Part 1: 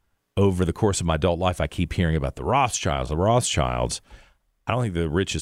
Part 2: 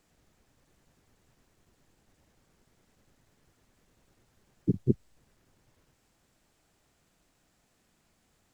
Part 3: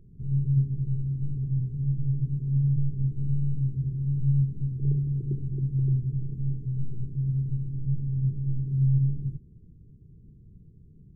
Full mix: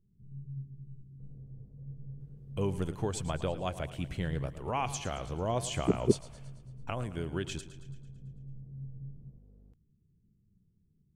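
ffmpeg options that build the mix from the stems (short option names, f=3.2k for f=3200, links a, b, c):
-filter_complex "[0:a]adelay=2200,volume=-12.5dB,asplit=2[a][b];[b]volume=-14.5dB[c];[1:a]lowpass=f=460:t=q:w=4.9,aeval=exprs='val(0)+0.00251*(sin(2*PI*50*n/s)+sin(2*PI*2*50*n/s)/2+sin(2*PI*3*50*n/s)/3+sin(2*PI*4*50*n/s)/4+sin(2*PI*5*50*n/s)/5)':c=same,adelay=1200,volume=-4dB[d];[2:a]equalizer=f=200:w=4.7:g=7,flanger=delay=9.9:depth=3.3:regen=-62:speed=0.76:shape=sinusoidal,volume=-15dB[e];[c]aecho=0:1:111|222|333|444|555|666|777|888|999:1|0.57|0.325|0.185|0.106|0.0602|0.0343|0.0195|0.0111[f];[a][d][e][f]amix=inputs=4:normalize=0"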